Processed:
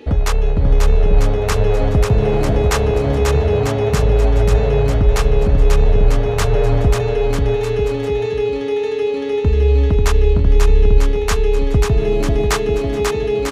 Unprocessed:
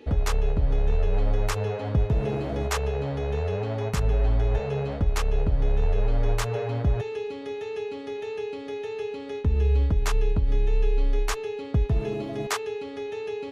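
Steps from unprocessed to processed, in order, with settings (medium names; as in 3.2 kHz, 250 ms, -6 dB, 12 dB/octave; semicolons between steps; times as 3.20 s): in parallel at -8 dB: saturation -22.5 dBFS, distortion -12 dB; on the sum: bouncing-ball echo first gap 540 ms, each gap 0.75×, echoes 5; trim +6 dB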